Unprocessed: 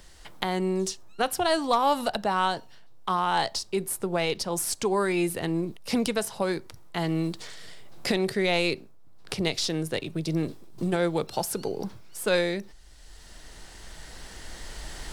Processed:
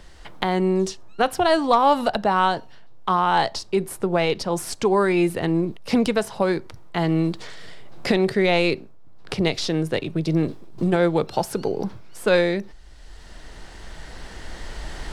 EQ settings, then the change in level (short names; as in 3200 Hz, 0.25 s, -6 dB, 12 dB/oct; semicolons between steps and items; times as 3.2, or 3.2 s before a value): LPF 2600 Hz 6 dB/oct; +6.5 dB